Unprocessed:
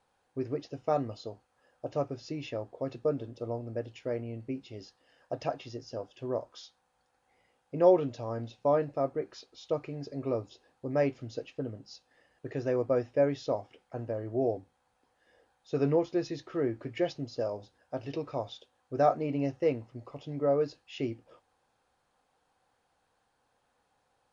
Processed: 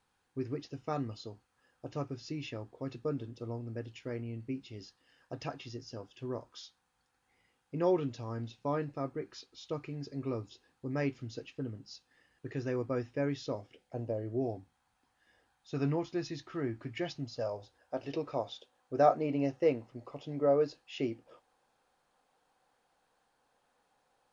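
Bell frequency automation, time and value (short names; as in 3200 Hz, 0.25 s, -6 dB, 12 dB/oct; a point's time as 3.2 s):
bell -11.5 dB 0.91 oct
13.43 s 610 Hz
14.11 s 1600 Hz
14.47 s 500 Hz
17.21 s 500 Hz
18.16 s 81 Hz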